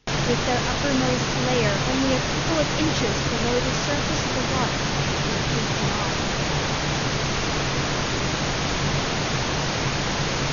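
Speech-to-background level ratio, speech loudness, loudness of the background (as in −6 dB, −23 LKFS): −5.0 dB, −28.5 LKFS, −23.5 LKFS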